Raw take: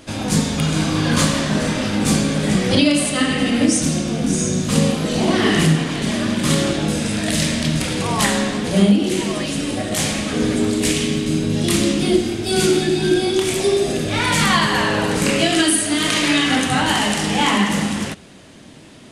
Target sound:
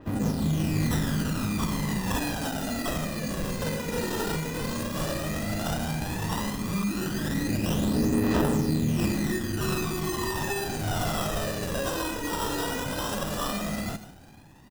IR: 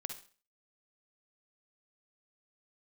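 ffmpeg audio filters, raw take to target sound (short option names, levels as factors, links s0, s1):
-filter_complex "[0:a]equalizer=f=1000:w=0.8:g=-12,acrossover=split=3100[s0][s1];[s0]alimiter=limit=0.158:level=0:latency=1:release=238[s2];[s2][s1]amix=inputs=2:normalize=0,dynaudnorm=f=140:g=11:m=1.78,aresample=16000,acrusher=bits=5:mode=log:mix=0:aa=0.000001,aresample=44100,atempo=1.3,acrusher=samples=20:mix=1:aa=0.000001,aecho=1:1:150:0.188,asoftclip=type=tanh:threshold=0.211,aphaser=in_gain=1:out_gain=1:delay=2.2:decay=0.58:speed=0.12:type=triangular,adynamicequalizer=threshold=0.0126:dfrequency=4300:dqfactor=0.7:tfrequency=4300:tqfactor=0.7:attack=5:release=100:ratio=0.375:range=2:mode=boostabove:tftype=highshelf,volume=0.398"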